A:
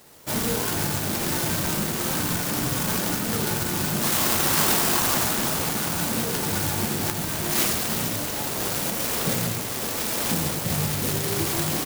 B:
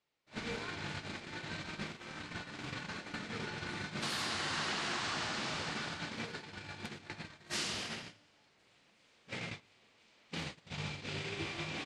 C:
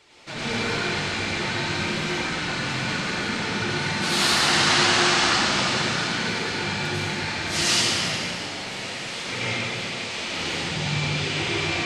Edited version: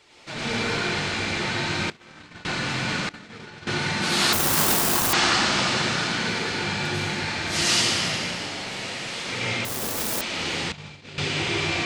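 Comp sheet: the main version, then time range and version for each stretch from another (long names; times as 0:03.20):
C
0:01.90–0:02.45: punch in from B
0:03.09–0:03.67: punch in from B
0:04.33–0:05.13: punch in from A
0:09.65–0:10.21: punch in from A
0:10.72–0:11.18: punch in from B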